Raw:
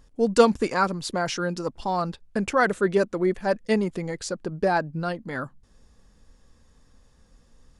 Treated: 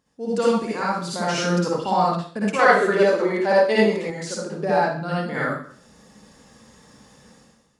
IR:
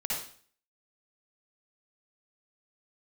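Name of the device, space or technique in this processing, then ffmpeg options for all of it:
far laptop microphone: -filter_complex "[1:a]atrim=start_sample=2205[link_01];[0:a][link_01]afir=irnorm=-1:irlink=0,highpass=150,dynaudnorm=framelen=120:gausssize=7:maxgain=16.5dB,asettb=1/sr,asplit=3[link_02][link_03][link_04];[link_02]atrim=end=2.594[link_05];[link_03]atrim=start=2.59:end=4.1,asetpts=PTS-STARTPTS,afade=type=in:duration=0.004:curve=qsin,afade=type=out:start_time=1.506:duration=0.004:curve=qsin,equalizer=frequency=125:width_type=o:width=1:gain=-7,equalizer=frequency=500:width_type=o:width=1:gain=6,equalizer=frequency=1000:width_type=o:width=1:gain=4,equalizer=frequency=2000:width_type=o:width=1:gain=4,equalizer=frequency=4000:width_type=o:width=1:gain=7[link_06];[link_04]atrim=start=4.096[link_07];[link_05][link_06]acrossfade=duration=0.004:curve1=hsin:curve2=qsin[link_08];[link_08][link_07]acrossfade=duration=0.004:curve1=qsin:curve2=hsin,volume=-7.5dB"

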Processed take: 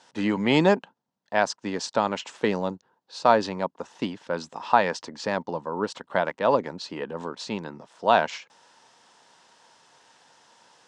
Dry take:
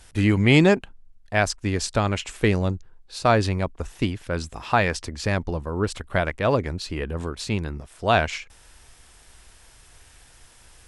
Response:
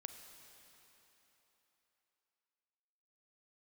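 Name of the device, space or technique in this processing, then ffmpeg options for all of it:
television speaker: -af "highpass=frequency=180:width=0.5412,highpass=frequency=180:width=1.3066,equalizer=frequency=350:width_type=q:width=4:gain=-3,equalizer=frequency=530:width_type=q:width=4:gain=4,equalizer=frequency=920:width_type=q:width=4:gain=10,equalizer=frequency=2300:width_type=q:width=4:gain=-6,lowpass=frequency=6700:width=0.5412,lowpass=frequency=6700:width=1.3066,volume=-2.5dB"

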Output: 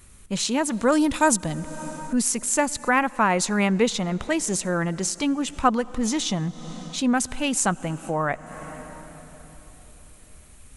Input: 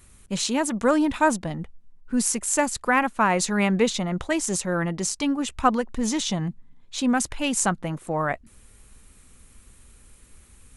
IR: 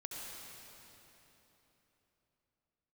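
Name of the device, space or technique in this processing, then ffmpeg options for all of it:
ducked reverb: -filter_complex "[0:a]asettb=1/sr,asplit=3[link_01][link_02][link_03];[link_01]atrim=end=0.924[link_04];[link_02]atrim=start=0.92:end=1.57,asetpts=PTS-STARTPTS,afade=type=in:duration=0.004:curve=qsin,afade=type=out:start_time=0.646:duration=0.004:curve=qsin,bass=frequency=250:gain=2,treble=frequency=4000:gain=11[link_05];[link_03]atrim=start=1.566[link_06];[link_04][link_05]acrossfade=duration=0.004:curve1=hsin:curve2=qsin[link_07];[link_07][link_06]acrossfade=duration=0.004:curve1=qsin:curve2=hsin,asplit=3[link_08][link_09][link_10];[1:a]atrim=start_sample=2205[link_11];[link_09][link_11]afir=irnorm=-1:irlink=0[link_12];[link_10]apad=whole_len=474743[link_13];[link_12][link_13]sidechaincompress=threshold=-38dB:ratio=8:attack=33:release=254,volume=-4.5dB[link_14];[link_08][link_14]amix=inputs=2:normalize=0"

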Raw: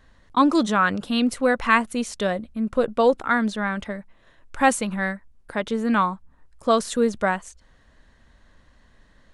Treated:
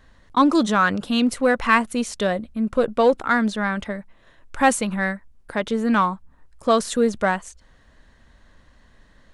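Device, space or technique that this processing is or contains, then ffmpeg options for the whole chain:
parallel distortion: -filter_complex "[0:a]asplit=2[link_01][link_02];[link_02]asoftclip=type=hard:threshold=-19dB,volume=-11dB[link_03];[link_01][link_03]amix=inputs=2:normalize=0"

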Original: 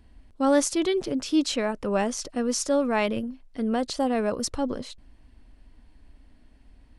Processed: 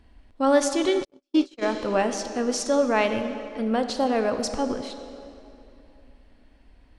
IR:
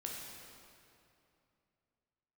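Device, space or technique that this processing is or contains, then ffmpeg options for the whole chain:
filtered reverb send: -filter_complex "[0:a]asplit=2[link_01][link_02];[link_02]highpass=280,lowpass=6400[link_03];[1:a]atrim=start_sample=2205[link_04];[link_03][link_04]afir=irnorm=-1:irlink=0,volume=-1dB[link_05];[link_01][link_05]amix=inputs=2:normalize=0,asplit=3[link_06][link_07][link_08];[link_06]afade=type=out:start_time=1.03:duration=0.02[link_09];[link_07]agate=range=-54dB:threshold=-19dB:ratio=16:detection=peak,afade=type=in:start_time=1.03:duration=0.02,afade=type=out:start_time=1.61:duration=0.02[link_10];[link_08]afade=type=in:start_time=1.61:duration=0.02[link_11];[link_09][link_10][link_11]amix=inputs=3:normalize=0,highshelf=frequency=9200:gain=-4.5,volume=-1dB"

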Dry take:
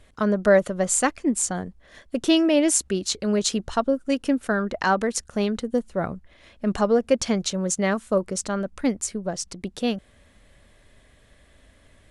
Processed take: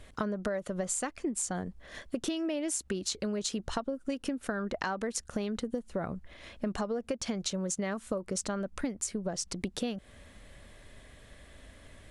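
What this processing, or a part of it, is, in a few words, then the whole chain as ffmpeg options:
serial compression, leveller first: -af "acompressor=threshold=-23dB:ratio=3,acompressor=threshold=-33dB:ratio=6,volume=2.5dB"

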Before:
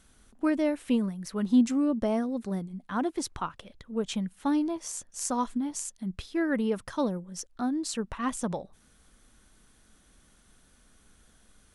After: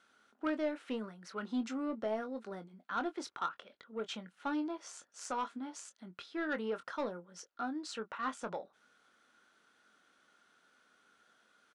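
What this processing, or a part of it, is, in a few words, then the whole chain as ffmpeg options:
intercom: -filter_complex "[0:a]highpass=390,lowpass=4500,equalizer=frequency=1400:width_type=o:width=0.21:gain=11,asoftclip=type=tanh:threshold=-23dB,asplit=2[link_01][link_02];[link_02]adelay=23,volume=-10dB[link_03];[link_01][link_03]amix=inputs=2:normalize=0,volume=-4.5dB"

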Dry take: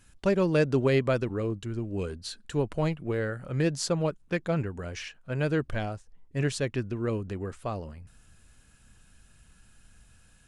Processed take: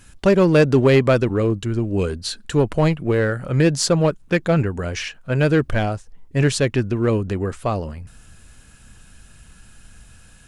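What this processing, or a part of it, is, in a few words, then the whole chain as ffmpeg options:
parallel distortion: -filter_complex "[0:a]asplit=2[link_01][link_02];[link_02]asoftclip=type=hard:threshold=-24.5dB,volume=-4.5dB[link_03];[link_01][link_03]amix=inputs=2:normalize=0,volume=7dB"

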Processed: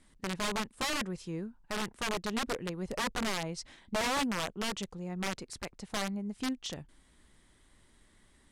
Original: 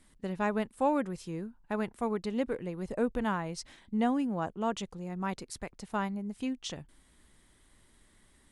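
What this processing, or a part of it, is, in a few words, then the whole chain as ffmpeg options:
overflowing digital effects unit: -af "aeval=exprs='(mod(21.1*val(0)+1,2)-1)/21.1':channel_layout=same,lowpass=9300"

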